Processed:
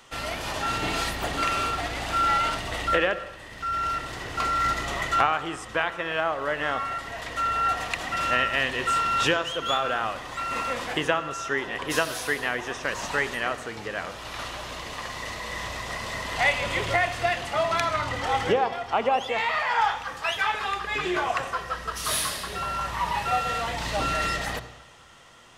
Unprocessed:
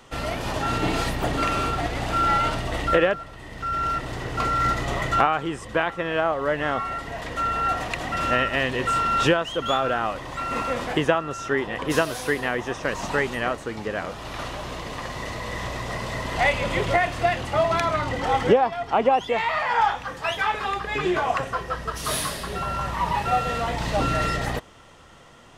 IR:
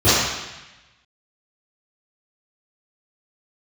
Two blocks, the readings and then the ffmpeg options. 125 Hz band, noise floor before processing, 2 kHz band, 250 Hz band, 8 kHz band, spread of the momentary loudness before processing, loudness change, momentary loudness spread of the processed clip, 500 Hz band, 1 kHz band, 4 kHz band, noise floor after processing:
-7.5 dB, -40 dBFS, 0.0 dB, -7.0 dB, +1.5 dB, 10 LU, -2.0 dB, 10 LU, -5.0 dB, -2.0 dB, +1.0 dB, -42 dBFS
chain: -filter_complex "[0:a]tiltshelf=f=800:g=-5,asplit=2[s0][s1];[1:a]atrim=start_sample=2205,adelay=36[s2];[s1][s2]afir=irnorm=-1:irlink=0,volume=0.0126[s3];[s0][s3]amix=inputs=2:normalize=0,volume=0.668"

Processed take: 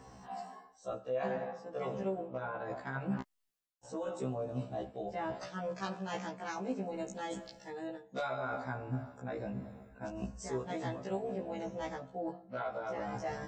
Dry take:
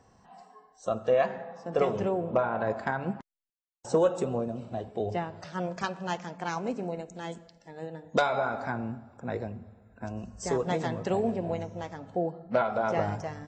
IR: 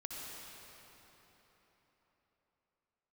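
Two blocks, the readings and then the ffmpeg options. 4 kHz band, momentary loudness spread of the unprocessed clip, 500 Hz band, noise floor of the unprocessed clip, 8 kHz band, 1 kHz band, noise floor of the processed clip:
-7.5 dB, 14 LU, -9.5 dB, -63 dBFS, -6.5 dB, -8.0 dB, -64 dBFS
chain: -af "areverse,acompressor=threshold=0.00891:ratio=10,areverse,afftfilt=real='re*1.73*eq(mod(b,3),0)':imag='im*1.73*eq(mod(b,3),0)':win_size=2048:overlap=0.75,volume=2.82"

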